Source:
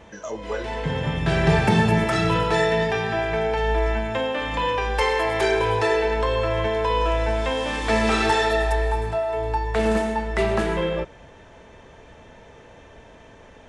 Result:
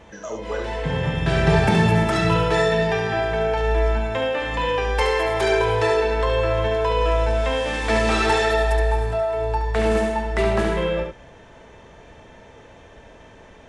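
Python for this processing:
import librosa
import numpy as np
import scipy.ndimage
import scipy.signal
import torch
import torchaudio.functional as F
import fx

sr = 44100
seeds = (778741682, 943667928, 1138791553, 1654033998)

y = x + 10.0 ** (-5.5 / 20.0) * np.pad(x, (int(71 * sr / 1000.0), 0))[:len(x)]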